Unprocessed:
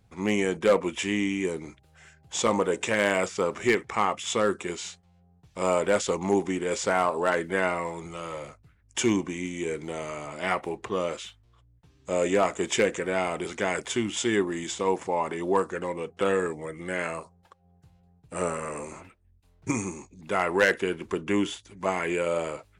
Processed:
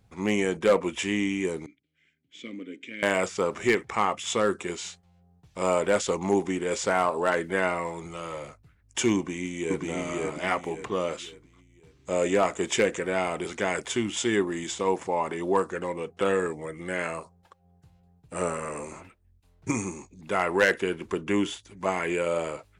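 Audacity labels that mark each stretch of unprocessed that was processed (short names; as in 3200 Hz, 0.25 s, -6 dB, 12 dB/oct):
1.660000	3.030000	vowel filter i
9.160000	9.840000	echo throw 0.54 s, feedback 35%, level -1 dB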